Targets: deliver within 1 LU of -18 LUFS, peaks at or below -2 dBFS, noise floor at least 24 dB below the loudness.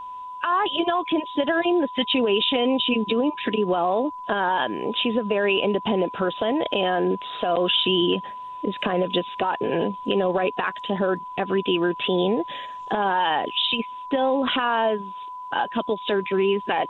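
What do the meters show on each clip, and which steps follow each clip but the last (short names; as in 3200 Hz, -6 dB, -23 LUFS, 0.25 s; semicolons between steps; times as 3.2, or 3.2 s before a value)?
steady tone 1000 Hz; tone level -33 dBFS; loudness -23.5 LUFS; peak -9.5 dBFS; loudness target -18.0 LUFS
-> notch 1000 Hz, Q 30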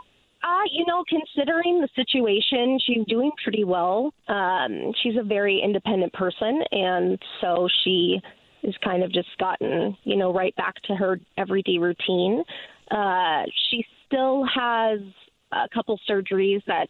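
steady tone none; loudness -23.5 LUFS; peak -10.5 dBFS; loudness target -18.0 LUFS
-> gain +5.5 dB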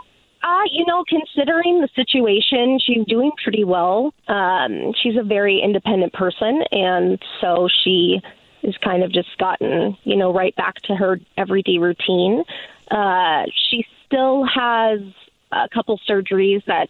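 loudness -18.0 LUFS; peak -5.0 dBFS; noise floor -57 dBFS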